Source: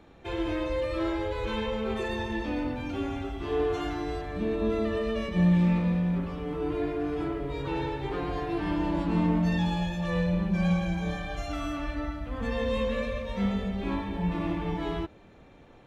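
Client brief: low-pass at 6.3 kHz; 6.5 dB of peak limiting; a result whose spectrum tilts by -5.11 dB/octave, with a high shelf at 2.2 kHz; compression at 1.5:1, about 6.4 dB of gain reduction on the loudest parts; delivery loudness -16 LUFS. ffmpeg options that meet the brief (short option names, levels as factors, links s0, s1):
-af "lowpass=6300,highshelf=f=2200:g=7,acompressor=threshold=0.0141:ratio=1.5,volume=10,alimiter=limit=0.447:level=0:latency=1"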